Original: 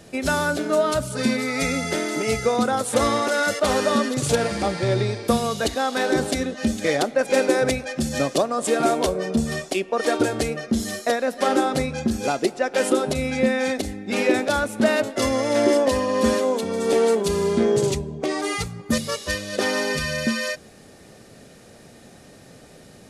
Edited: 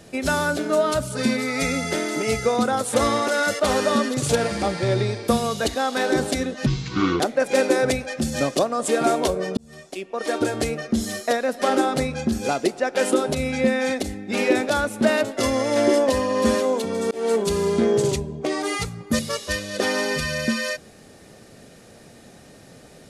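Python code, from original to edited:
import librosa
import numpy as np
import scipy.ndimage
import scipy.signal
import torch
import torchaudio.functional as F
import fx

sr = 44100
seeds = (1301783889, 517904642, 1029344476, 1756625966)

y = fx.edit(x, sr, fx.speed_span(start_s=6.66, length_s=0.33, speed=0.61),
    fx.fade_in_span(start_s=9.36, length_s=1.07),
    fx.fade_in_span(start_s=16.9, length_s=0.25), tone=tone)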